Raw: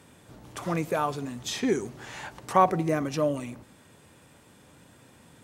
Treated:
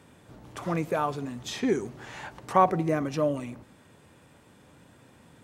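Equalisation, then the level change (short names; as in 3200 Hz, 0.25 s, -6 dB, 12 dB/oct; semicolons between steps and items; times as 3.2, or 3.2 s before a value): bell 13000 Hz -6 dB 2.4 oct; 0.0 dB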